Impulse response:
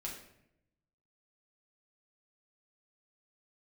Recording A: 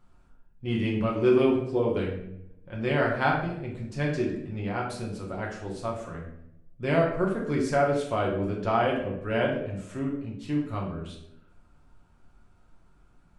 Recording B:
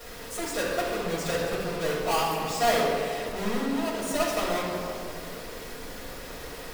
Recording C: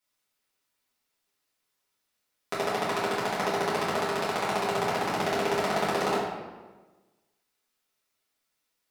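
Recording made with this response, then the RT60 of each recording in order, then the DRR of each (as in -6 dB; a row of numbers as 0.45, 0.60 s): A; 0.80, 2.6, 1.3 s; -3.0, -10.0, -9.5 dB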